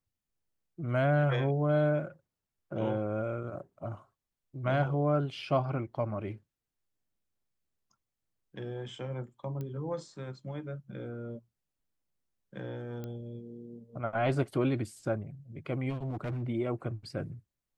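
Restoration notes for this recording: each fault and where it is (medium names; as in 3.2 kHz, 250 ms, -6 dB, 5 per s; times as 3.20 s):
9.61 s: pop -27 dBFS
13.04 s: pop -27 dBFS
15.89–16.43 s: clipped -30.5 dBFS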